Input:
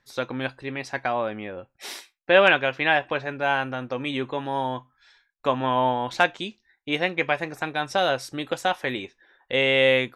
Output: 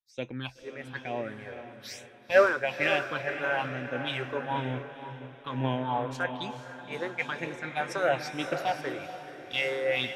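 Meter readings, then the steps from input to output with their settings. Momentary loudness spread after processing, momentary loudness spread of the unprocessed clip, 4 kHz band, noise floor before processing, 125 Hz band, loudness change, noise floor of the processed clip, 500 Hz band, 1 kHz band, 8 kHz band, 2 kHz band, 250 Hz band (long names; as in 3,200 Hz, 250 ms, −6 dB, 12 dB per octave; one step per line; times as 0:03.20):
16 LU, 17 LU, −8.5 dB, −73 dBFS, −2.0 dB, −6.5 dB, −52 dBFS, −5.5 dB, −7.0 dB, −5.0 dB, −6.5 dB, −6.0 dB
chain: brickwall limiter −13.5 dBFS, peak gain reduction 8.5 dB
all-pass phaser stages 6, 1.1 Hz, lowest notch 190–1,300 Hz
on a send: feedback delay with all-pass diffusion 510 ms, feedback 63%, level −5.5 dB
on the sum: multiband upward and downward expander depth 100%
level −2 dB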